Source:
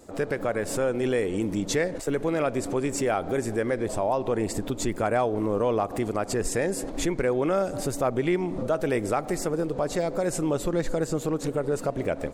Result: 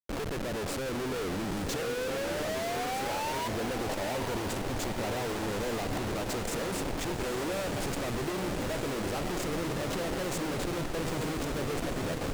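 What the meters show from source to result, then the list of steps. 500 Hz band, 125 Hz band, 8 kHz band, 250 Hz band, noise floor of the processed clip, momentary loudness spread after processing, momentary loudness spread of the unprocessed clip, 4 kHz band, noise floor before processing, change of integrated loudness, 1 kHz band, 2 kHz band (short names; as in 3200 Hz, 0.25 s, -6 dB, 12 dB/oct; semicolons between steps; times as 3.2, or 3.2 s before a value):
-8.0 dB, -4.0 dB, -4.0 dB, -6.5 dB, -34 dBFS, 1 LU, 3 LU, +3.0 dB, -37 dBFS, -6.0 dB, -4.0 dB, -2.0 dB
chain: painted sound rise, 1.81–3.48, 460–990 Hz -23 dBFS; Schmitt trigger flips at -36 dBFS; diffused feedback echo 0.925 s, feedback 73%, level -7.5 dB; Doppler distortion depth 0.2 ms; gain -8 dB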